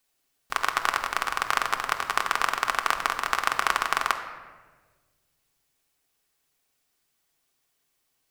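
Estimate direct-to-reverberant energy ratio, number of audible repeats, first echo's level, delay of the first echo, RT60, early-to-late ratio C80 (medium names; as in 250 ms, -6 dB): 4.0 dB, no echo, no echo, no echo, 1.5 s, 10.5 dB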